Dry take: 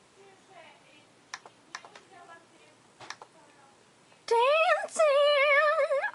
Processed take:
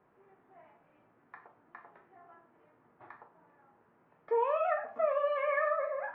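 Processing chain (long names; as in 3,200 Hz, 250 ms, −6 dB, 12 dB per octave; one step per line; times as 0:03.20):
low-pass filter 1,700 Hz 24 dB per octave
convolution reverb, pre-delay 3 ms, DRR 2.5 dB
level −7.5 dB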